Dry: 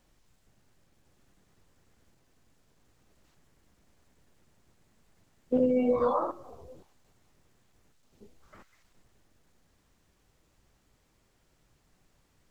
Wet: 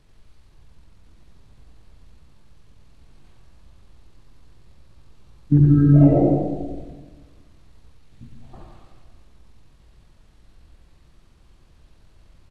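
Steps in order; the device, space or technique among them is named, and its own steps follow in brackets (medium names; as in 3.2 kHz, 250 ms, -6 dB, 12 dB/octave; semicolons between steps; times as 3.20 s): monster voice (pitch shift -9.5 st; bass shelf 160 Hz +9 dB; delay 90 ms -7.5 dB; reverberation RT60 1.3 s, pre-delay 64 ms, DRR 2 dB); trim +7 dB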